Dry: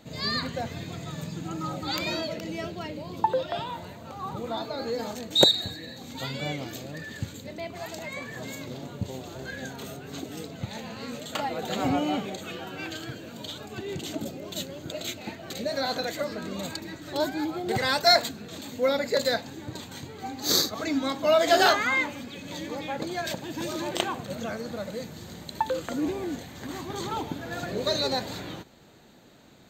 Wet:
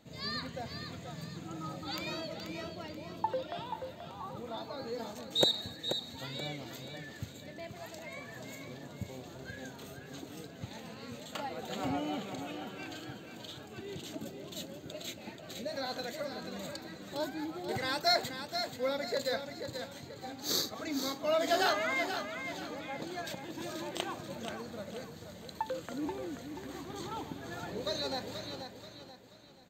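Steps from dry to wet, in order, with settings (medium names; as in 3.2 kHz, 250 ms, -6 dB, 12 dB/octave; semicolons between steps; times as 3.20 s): feedback delay 482 ms, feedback 38%, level -8 dB; trim -9 dB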